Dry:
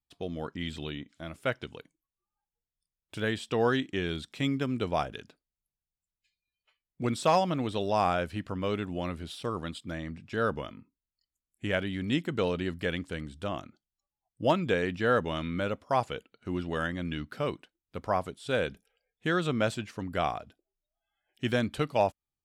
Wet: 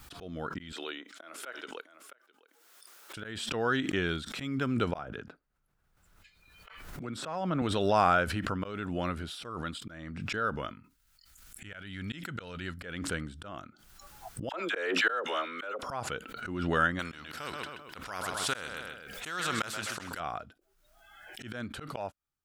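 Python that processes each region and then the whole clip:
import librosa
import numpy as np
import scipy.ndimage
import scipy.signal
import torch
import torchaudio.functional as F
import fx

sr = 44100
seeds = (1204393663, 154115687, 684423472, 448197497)

y = fx.chain(x, sr, fx.highpass(hz=340.0, slope=24),
    fx.echo_single(ms=659, db=-22.0), at=(0.72, 3.17))
y = fx.chain(y, sr, fx.high_shelf(hz=2500.0, db=-10.0),
    fx.band_squash(depth_pct=70), at=(4.98, 7.62))
y = fx.chain(y, sr, fx.peak_eq(hz=380.0, db=-9.5, octaves=2.9),
    fx.notch(hz=1100.0, q=11.0),
    fx.sustainer(db_per_s=120.0), at=(10.74, 12.78))
y = fx.chain(y, sr, fx.highpass(hz=400.0, slope=24),
    fx.dispersion(late='lows', ms=46.0, hz=1000.0),
    fx.band_squash(depth_pct=40), at=(14.49, 15.83))
y = fx.chain(y, sr, fx.low_shelf(hz=380.0, db=-8.5),
    fx.echo_feedback(ms=129, feedback_pct=28, wet_db=-13),
    fx.spectral_comp(ratio=2.0), at=(16.99, 20.2))
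y = fx.auto_swell(y, sr, attack_ms=322.0)
y = fx.peak_eq(y, sr, hz=1400.0, db=10.0, octaves=0.47)
y = fx.pre_swell(y, sr, db_per_s=39.0)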